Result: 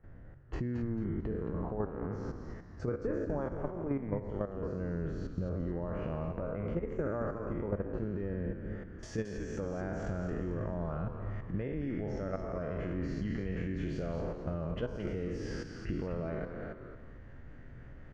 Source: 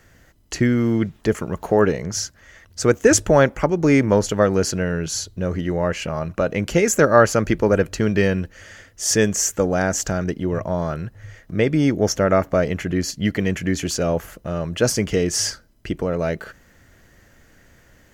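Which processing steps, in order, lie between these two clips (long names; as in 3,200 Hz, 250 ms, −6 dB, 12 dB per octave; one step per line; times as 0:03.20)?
peak hold with a decay on every bin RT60 1.21 s
output level in coarse steps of 13 dB
low-pass filter 1,300 Hz 12 dB per octave, from 0:09.03 2,400 Hz
downward compressor 4 to 1, threshold −34 dBFS, peak gain reduction 19.5 dB
spectral tilt −2 dB per octave
echo with shifted repeats 221 ms, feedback 35%, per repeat −140 Hz, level −7 dB
level −4.5 dB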